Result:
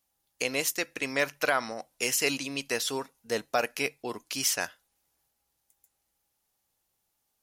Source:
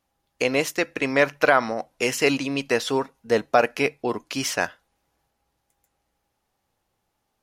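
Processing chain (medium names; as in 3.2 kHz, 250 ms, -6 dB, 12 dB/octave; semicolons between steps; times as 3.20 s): pre-emphasis filter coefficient 0.8; trim +3.5 dB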